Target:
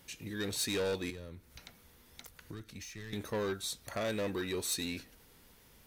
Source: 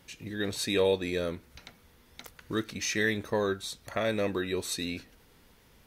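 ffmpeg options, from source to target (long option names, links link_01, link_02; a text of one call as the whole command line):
ffmpeg -i in.wav -filter_complex "[0:a]asoftclip=type=tanh:threshold=-27dB,highshelf=frequency=6400:gain=8,asettb=1/sr,asplit=3[link_01][link_02][link_03];[link_01]atrim=end=1.104[link_04];[link_02]atrim=start=1.1:end=3.13,asetpts=PTS-STARTPTS,afade=type=in:duration=0.004:curve=qsin,afade=type=out:start_time=2.026:duration=0.004:curve=qsin,acrossover=split=130[link_05][link_06];[link_06]acompressor=threshold=-44dB:ratio=8[link_07];[link_05][link_07]amix=inputs=2:normalize=0[link_08];[link_03]atrim=start=3.126[link_09];[link_04][link_08]acrossfade=duration=0.004:curve1=hsin:curve2=qsin[link_10];[link_10][link_09]acrossfade=duration=0.004:curve1=qsin:curve2=hsin,volume=-2.5dB" out.wav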